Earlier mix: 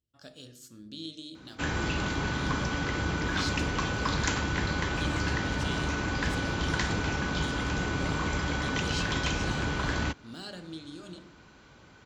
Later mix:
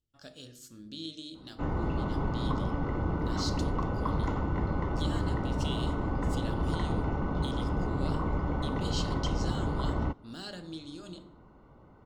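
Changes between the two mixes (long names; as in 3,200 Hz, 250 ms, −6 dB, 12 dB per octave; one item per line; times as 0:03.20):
background: add Savitzky-Golay smoothing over 65 samples
master: remove high-pass filter 50 Hz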